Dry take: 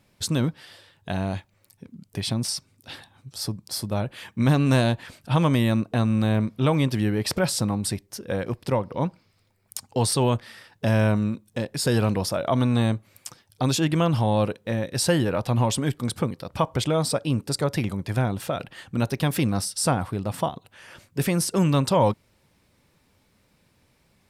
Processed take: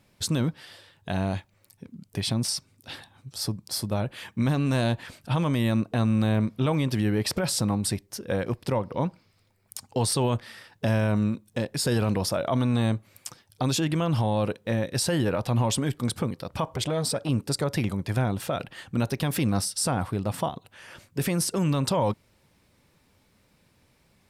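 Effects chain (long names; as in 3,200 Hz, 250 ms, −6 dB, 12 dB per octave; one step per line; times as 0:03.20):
brickwall limiter −16.5 dBFS, peak gain reduction 7 dB
0:16.64–0:17.29: saturating transformer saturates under 410 Hz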